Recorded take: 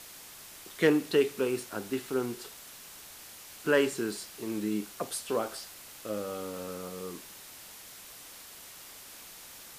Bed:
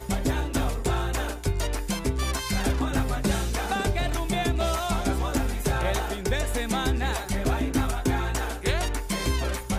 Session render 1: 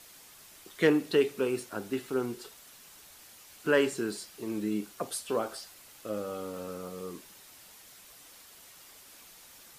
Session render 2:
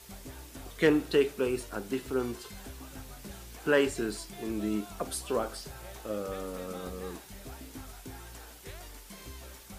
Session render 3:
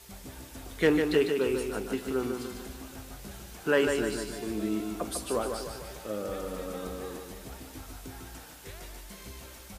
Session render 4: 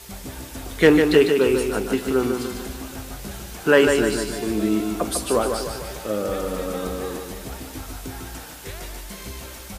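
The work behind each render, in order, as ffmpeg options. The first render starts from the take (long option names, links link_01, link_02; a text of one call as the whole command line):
ffmpeg -i in.wav -af "afftdn=noise_reduction=6:noise_floor=-49" out.wav
ffmpeg -i in.wav -i bed.wav -filter_complex "[1:a]volume=-20.5dB[link_01];[0:a][link_01]amix=inputs=2:normalize=0" out.wav
ffmpeg -i in.wav -af "aecho=1:1:149|298|447|596|745|894:0.531|0.271|0.138|0.0704|0.0359|0.0183" out.wav
ffmpeg -i in.wav -af "volume=9.5dB" out.wav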